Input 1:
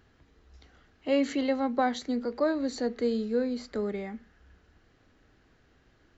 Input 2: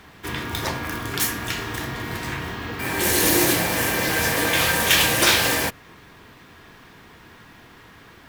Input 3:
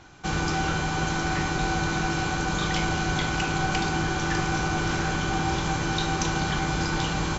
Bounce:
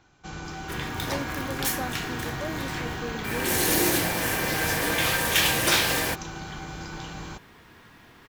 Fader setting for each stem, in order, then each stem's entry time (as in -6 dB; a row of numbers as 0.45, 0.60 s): -9.0, -4.5, -11.0 dB; 0.00, 0.45, 0.00 s